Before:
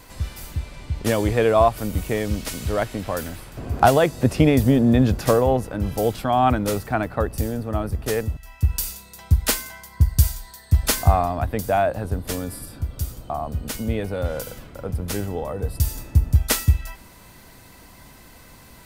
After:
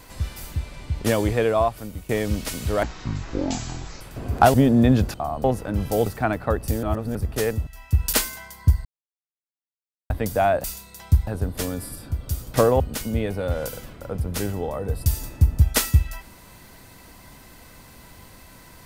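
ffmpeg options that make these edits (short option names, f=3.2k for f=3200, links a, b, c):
-filter_complex "[0:a]asplit=17[a][b][c][d][e][f][g][h][i][j][k][l][m][n][o][p][q];[a]atrim=end=2.09,asetpts=PTS-STARTPTS,afade=t=out:st=1.13:d=0.96:silence=0.199526[r];[b]atrim=start=2.09:end=2.834,asetpts=PTS-STARTPTS,afade=t=in:d=0.004:c=hsin:silence=0.199526[s];[c]atrim=start=2.83:end=3.42,asetpts=PTS-STARTPTS,asetrate=22050,aresample=44100[t];[d]atrim=start=3.416:end=3.952[u];[e]atrim=start=4.638:end=5.242[v];[f]atrim=start=13.238:end=13.542[w];[g]atrim=start=5.498:end=6.122[x];[h]atrim=start=6.758:end=7.532[y];[i]atrim=start=7.528:end=7.852,asetpts=PTS-STARTPTS,areverse[z];[j]atrim=start=7.848:end=8.832[aa];[k]atrim=start=9.458:end=10.18,asetpts=PTS-STARTPTS,afade=t=out:st=0.718:d=0.004:c=hsin[ab];[l]atrim=start=10.18:end=11.43,asetpts=PTS-STARTPTS,volume=0[ac];[m]atrim=start=11.43:end=11.972,asetpts=PTS-STARTPTS,afade=t=in:d=0.004:c=hsin[ad];[n]atrim=start=8.828:end=9.462[ae];[o]atrim=start=11.968:end=13.242[af];[p]atrim=start=5.238:end=5.502[ag];[q]atrim=start=13.538[ah];[r][s]concat=n=2:v=0:a=1[ai];[ai][t]acrossfade=d=0.004:c1=hsin:c2=hsin[aj];[aj][u]acrossfade=d=0.004:c1=hsin:c2=hsin[ak];[ak][v]acrossfade=d=0.004:c1=hsin:c2=hsin[al];[al][w]acrossfade=d=0.004:c1=hsin:c2=hsin[am];[am][x]acrossfade=d=0.004:c1=hsin:c2=hsin[an];[an][y]acrossfade=d=0.004:c1=hsin:c2=hsin[ao];[ao][z]acrossfade=d=0.004:c1=hsin:c2=hsin[ap];[ap][aa]acrossfade=d=0.004:c1=hsin:c2=hsin[aq];[ab][ac][ad]concat=n=3:v=0:a=1[ar];[aq][ar]acrossfade=d=0.004:c1=hsin:c2=hsin[as];[as][ae]acrossfade=d=0.004:c1=hsin:c2=hsin[at];[at][af]acrossfade=d=0.004:c1=hsin:c2=hsin[au];[au][ag]acrossfade=d=0.004:c1=hsin:c2=hsin[av];[av][ah]acrossfade=d=0.004:c1=hsin:c2=hsin"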